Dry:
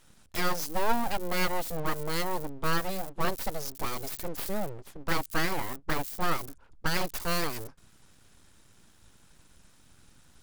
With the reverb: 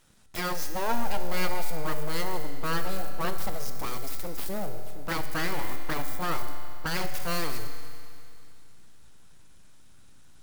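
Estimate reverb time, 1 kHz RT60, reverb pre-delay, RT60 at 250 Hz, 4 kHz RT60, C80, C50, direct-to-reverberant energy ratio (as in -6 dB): 2.5 s, 2.5 s, 13 ms, 2.5 s, 2.5 s, 8.5 dB, 8.0 dB, 6.5 dB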